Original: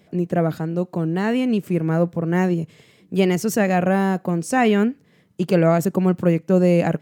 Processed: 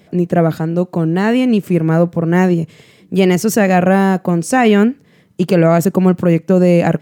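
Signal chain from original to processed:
boost into a limiter +8 dB
level −1 dB

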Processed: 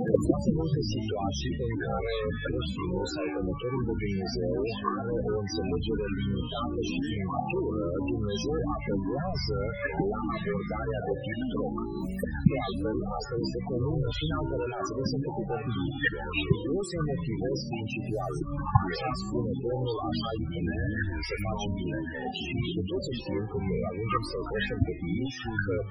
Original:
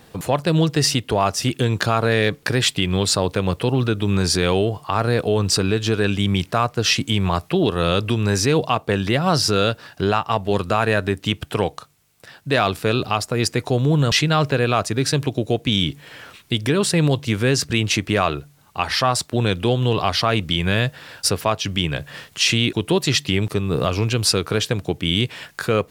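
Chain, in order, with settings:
high-pass filter 170 Hz 12 dB per octave
hum removal 286.1 Hz, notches 29
dynamic equaliser 230 Hz, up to −6 dB, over −32 dBFS, Q 1.3
in parallel at 0 dB: downward compressor 6 to 1, threshold −28 dBFS, peak gain reduction 13.5 dB
on the sum: sine wavefolder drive 17 dB, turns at 1 dBFS
gate with flip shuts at −4 dBFS, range −26 dB
spectral peaks only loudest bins 8
delay with pitch and tempo change per echo 80 ms, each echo −7 semitones, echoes 3

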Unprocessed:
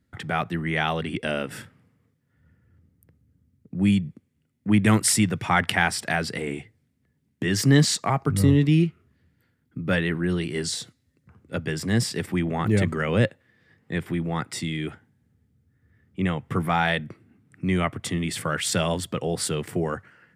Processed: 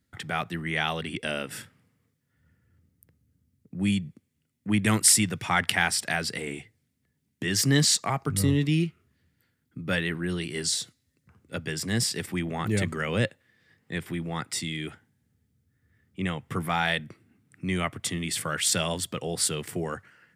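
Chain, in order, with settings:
high-shelf EQ 2,400 Hz +9.5 dB
level −5.5 dB

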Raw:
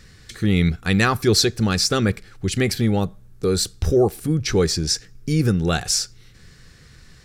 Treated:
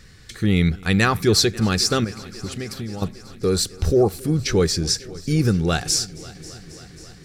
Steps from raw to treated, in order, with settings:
0:02.04–0:03.02: downward compressor 6 to 1, threshold −28 dBFS, peak gain reduction 13 dB
on a send: echo machine with several playback heads 270 ms, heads first and second, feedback 71%, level −23.5 dB

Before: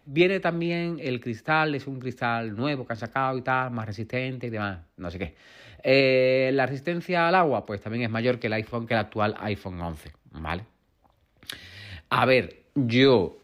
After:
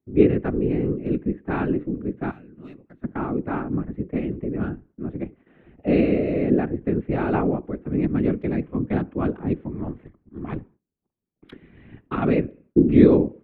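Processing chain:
adaptive Wiener filter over 9 samples
0:02.31–0:03.04: first-order pre-emphasis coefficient 0.9
noise gate with hold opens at −46 dBFS
drawn EQ curve 110 Hz 0 dB, 220 Hz +13 dB, 330 Hz +11 dB, 530 Hz −3 dB, 1,200 Hz −3 dB, 2,900 Hz −9 dB, 5,000 Hz −25 dB, 8,500 Hz −27 dB
random phases in short frames
level −3.5 dB

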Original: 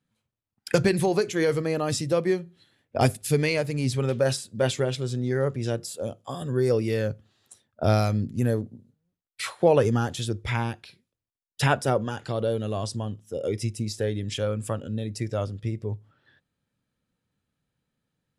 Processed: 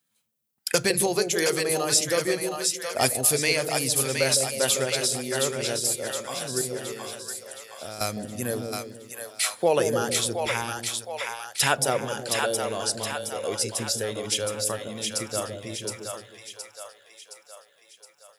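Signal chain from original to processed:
RIAA equalisation recording
0:06.61–0:08.01: downward compressor 2 to 1, threshold −47 dBFS, peak gain reduction 15 dB
echo with a time of its own for lows and highs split 580 Hz, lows 157 ms, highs 718 ms, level −4 dB

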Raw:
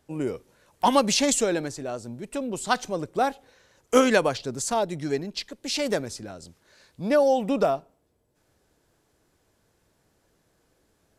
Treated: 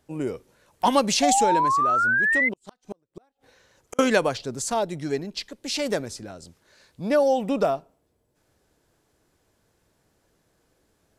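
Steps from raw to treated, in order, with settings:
0:02.44–0:03.99: gate with flip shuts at −22 dBFS, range −41 dB
0:01.22–0:02.49: sound drawn into the spectrogram rise 700–2,100 Hz −21 dBFS

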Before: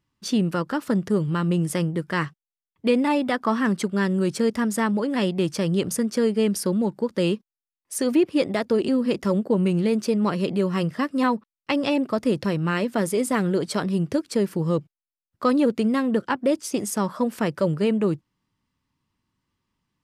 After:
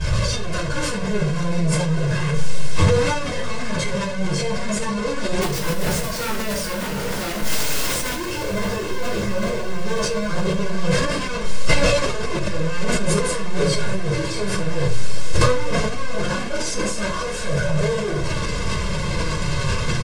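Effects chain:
sign of each sample alone
Butterworth low-pass 9,300 Hz 36 dB per octave
notch filter 930 Hz, Q 20
comb filter 1.9 ms, depth 89%
transient designer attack −12 dB, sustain +6 dB
brickwall limiter −20.5 dBFS, peak gain reduction 10 dB
flanger 0.17 Hz, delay 1.2 ms, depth 9.3 ms, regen +28%
0:05.41–0:08.16: wrap-around overflow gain 25.5 dB
feedback delay with all-pass diffusion 568 ms, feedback 54%, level −13 dB
convolution reverb RT60 0.45 s, pre-delay 3 ms, DRR −14.5 dB
level that may fall only so fast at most 26 dB per second
level −11 dB

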